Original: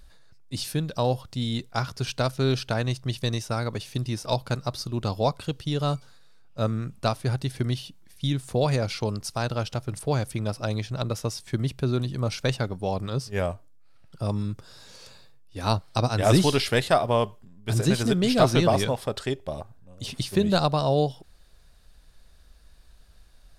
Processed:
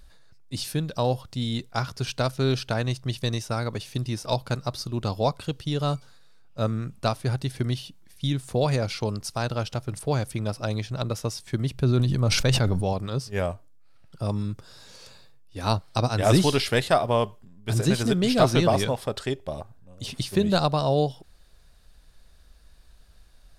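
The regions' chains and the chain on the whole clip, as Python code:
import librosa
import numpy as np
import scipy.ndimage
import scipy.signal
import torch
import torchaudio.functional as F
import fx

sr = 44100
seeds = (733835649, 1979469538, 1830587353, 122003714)

y = fx.chain(x, sr, fx.low_shelf(hz=130.0, db=8.0),
    fx.sustainer(db_per_s=24.0), at=(11.74, 12.93))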